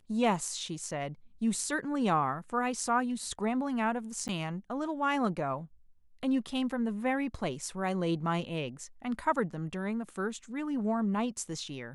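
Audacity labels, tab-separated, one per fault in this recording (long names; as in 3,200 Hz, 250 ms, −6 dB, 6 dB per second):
4.280000	4.290000	drop-out 9.5 ms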